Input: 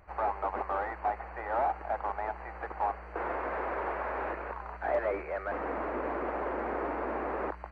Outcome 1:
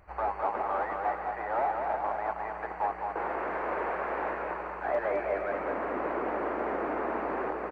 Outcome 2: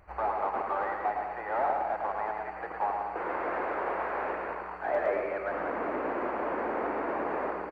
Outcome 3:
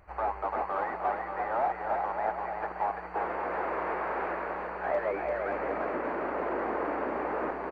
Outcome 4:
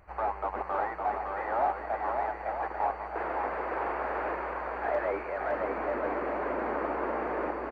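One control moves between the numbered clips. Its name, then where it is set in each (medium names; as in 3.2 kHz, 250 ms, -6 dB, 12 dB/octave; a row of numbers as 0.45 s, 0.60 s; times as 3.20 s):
bouncing-ball echo, first gap: 210 ms, 110 ms, 340 ms, 560 ms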